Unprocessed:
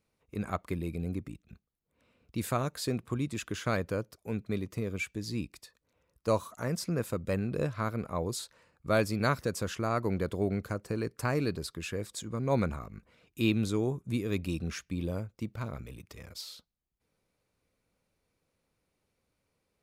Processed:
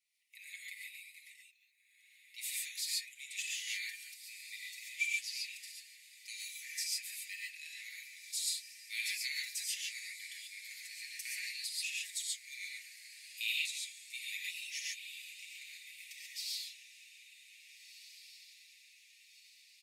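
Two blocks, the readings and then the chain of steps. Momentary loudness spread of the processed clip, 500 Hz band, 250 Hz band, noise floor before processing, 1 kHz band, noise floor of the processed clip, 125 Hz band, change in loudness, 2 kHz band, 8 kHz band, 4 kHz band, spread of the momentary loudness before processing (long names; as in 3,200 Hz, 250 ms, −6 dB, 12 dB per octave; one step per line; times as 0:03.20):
19 LU, below −40 dB, below −40 dB, −81 dBFS, below −40 dB, −64 dBFS, below −40 dB, −6.0 dB, 0.0 dB, +5.0 dB, +4.5 dB, 13 LU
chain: Chebyshev high-pass filter 1,900 Hz, order 8
comb filter 5.5 ms
feedback delay with all-pass diffusion 1,706 ms, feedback 54%, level −13 dB
reverb whose tail is shaped and stops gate 160 ms rising, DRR −3 dB
level −1.5 dB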